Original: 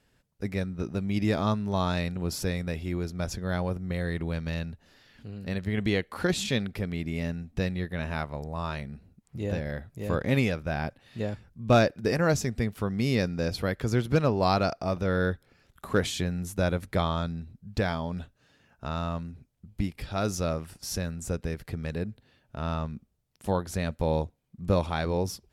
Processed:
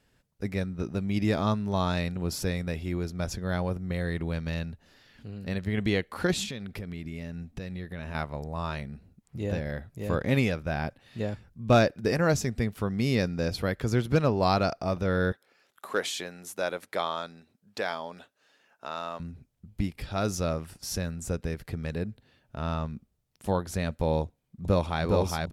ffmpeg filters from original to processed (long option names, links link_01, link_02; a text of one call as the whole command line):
ffmpeg -i in.wav -filter_complex "[0:a]asettb=1/sr,asplit=3[link_01][link_02][link_03];[link_01]atrim=end=6.444[link_04];[link_02]atrim=start=6.44:end=8.15,asetpts=PTS-STARTPTS,afade=type=in:duration=0.004:curve=qsin,afade=type=out:start_time=1.706:duration=0.004:curve=qsin,acompressor=threshold=-33dB:ratio=5:attack=3.2:release=140:knee=1:detection=peak[link_05];[link_03]atrim=start=8.146[link_06];[link_04][link_05]acrossfade=duration=0.004:curve1=hsin:curve2=qsin[link_07];[link_07][link_06]acrossfade=duration=0.004:curve1=qsin:curve2=hsin,asettb=1/sr,asplit=3[link_08][link_09][link_10];[link_08]atrim=end=15.324[link_11];[link_09]atrim=start=15.32:end=19.2,asetpts=PTS-STARTPTS,afade=type=in:duration=0.004:curve=qsin,afade=type=out:start_time=3.876:duration=0.004:curve=qsin,highpass=450[link_12];[link_10]atrim=start=19.196[link_13];[link_11][link_12]acrossfade=duration=0.004:curve1=hsin:curve2=qsin[link_14];[link_14][link_13]acrossfade=duration=0.004:curve1=qsin:curve2=hsin,asplit=2[link_15][link_16];[link_16]afade=type=in:start_time=24.23:duration=0.01,afade=type=out:start_time=25.04:duration=0.01,aecho=0:1:410|820|1230|1640|2050|2460|2870|3280|3690|4100|4510|4920:0.794328|0.55603|0.389221|0.272455|0.190718|0.133503|0.0934519|0.0654163|0.0457914|0.032054|0.0224378|0.0157065[link_17];[link_15][link_17]amix=inputs=2:normalize=0" out.wav